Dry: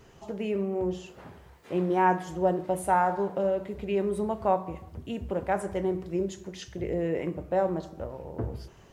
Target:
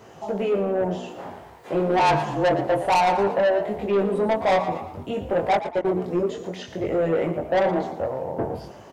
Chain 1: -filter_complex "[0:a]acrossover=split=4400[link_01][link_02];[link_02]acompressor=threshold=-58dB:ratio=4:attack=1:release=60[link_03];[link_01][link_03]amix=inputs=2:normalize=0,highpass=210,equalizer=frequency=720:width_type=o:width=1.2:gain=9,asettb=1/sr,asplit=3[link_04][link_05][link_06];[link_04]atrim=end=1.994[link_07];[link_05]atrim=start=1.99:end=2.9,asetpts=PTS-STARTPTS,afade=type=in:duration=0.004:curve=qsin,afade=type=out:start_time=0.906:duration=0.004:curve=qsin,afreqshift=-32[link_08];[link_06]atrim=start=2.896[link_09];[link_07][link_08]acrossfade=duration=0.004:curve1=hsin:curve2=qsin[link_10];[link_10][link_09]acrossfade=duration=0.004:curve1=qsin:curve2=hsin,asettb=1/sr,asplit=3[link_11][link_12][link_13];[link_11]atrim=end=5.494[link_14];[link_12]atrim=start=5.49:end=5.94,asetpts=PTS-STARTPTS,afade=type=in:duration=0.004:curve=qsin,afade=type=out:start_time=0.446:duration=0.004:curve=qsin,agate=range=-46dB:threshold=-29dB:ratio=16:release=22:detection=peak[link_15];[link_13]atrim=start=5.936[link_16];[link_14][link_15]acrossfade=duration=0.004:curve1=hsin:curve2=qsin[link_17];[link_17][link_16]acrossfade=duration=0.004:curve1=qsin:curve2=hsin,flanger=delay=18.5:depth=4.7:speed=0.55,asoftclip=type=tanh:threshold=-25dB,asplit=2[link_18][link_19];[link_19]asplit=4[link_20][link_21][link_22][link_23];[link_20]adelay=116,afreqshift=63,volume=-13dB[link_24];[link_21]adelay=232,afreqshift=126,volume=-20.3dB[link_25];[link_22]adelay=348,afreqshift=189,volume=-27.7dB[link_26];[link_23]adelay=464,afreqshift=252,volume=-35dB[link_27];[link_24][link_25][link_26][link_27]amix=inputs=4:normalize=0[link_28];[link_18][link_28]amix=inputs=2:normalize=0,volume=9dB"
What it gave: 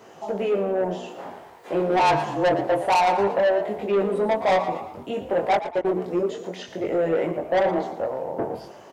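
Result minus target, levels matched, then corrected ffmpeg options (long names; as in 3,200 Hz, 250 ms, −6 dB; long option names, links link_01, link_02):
125 Hz band −4.0 dB
-filter_complex "[0:a]acrossover=split=4400[link_01][link_02];[link_02]acompressor=threshold=-58dB:ratio=4:attack=1:release=60[link_03];[link_01][link_03]amix=inputs=2:normalize=0,highpass=97,equalizer=frequency=720:width_type=o:width=1.2:gain=9,asettb=1/sr,asplit=3[link_04][link_05][link_06];[link_04]atrim=end=1.994[link_07];[link_05]atrim=start=1.99:end=2.9,asetpts=PTS-STARTPTS,afade=type=in:duration=0.004:curve=qsin,afade=type=out:start_time=0.906:duration=0.004:curve=qsin,afreqshift=-32[link_08];[link_06]atrim=start=2.896[link_09];[link_07][link_08]acrossfade=duration=0.004:curve1=hsin:curve2=qsin[link_10];[link_10][link_09]acrossfade=duration=0.004:curve1=qsin:curve2=hsin,asettb=1/sr,asplit=3[link_11][link_12][link_13];[link_11]atrim=end=5.494[link_14];[link_12]atrim=start=5.49:end=5.94,asetpts=PTS-STARTPTS,afade=type=in:duration=0.004:curve=qsin,afade=type=out:start_time=0.446:duration=0.004:curve=qsin,agate=range=-46dB:threshold=-29dB:ratio=16:release=22:detection=peak[link_15];[link_13]atrim=start=5.936[link_16];[link_14][link_15]acrossfade=duration=0.004:curve1=hsin:curve2=qsin[link_17];[link_17][link_16]acrossfade=duration=0.004:curve1=qsin:curve2=hsin,flanger=delay=18.5:depth=4.7:speed=0.55,asoftclip=type=tanh:threshold=-25dB,asplit=2[link_18][link_19];[link_19]asplit=4[link_20][link_21][link_22][link_23];[link_20]adelay=116,afreqshift=63,volume=-13dB[link_24];[link_21]adelay=232,afreqshift=126,volume=-20.3dB[link_25];[link_22]adelay=348,afreqshift=189,volume=-27.7dB[link_26];[link_23]adelay=464,afreqshift=252,volume=-35dB[link_27];[link_24][link_25][link_26][link_27]amix=inputs=4:normalize=0[link_28];[link_18][link_28]amix=inputs=2:normalize=0,volume=9dB"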